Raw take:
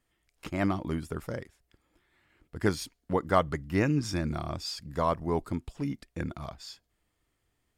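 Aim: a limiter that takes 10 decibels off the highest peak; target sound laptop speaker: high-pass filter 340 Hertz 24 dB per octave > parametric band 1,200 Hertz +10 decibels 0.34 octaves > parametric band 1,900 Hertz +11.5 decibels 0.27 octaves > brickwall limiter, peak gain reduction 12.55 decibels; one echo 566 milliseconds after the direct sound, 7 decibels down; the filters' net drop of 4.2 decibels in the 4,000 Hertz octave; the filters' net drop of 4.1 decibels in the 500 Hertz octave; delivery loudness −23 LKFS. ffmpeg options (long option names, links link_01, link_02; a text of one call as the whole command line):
ffmpeg -i in.wav -af "equalizer=frequency=500:width_type=o:gain=-5,equalizer=frequency=4000:width_type=o:gain=-6,alimiter=limit=-22.5dB:level=0:latency=1,highpass=frequency=340:width=0.5412,highpass=frequency=340:width=1.3066,equalizer=frequency=1200:width_type=o:width=0.34:gain=10,equalizer=frequency=1900:width_type=o:width=0.27:gain=11.5,aecho=1:1:566:0.447,volume=18.5dB,alimiter=limit=-10.5dB:level=0:latency=1" out.wav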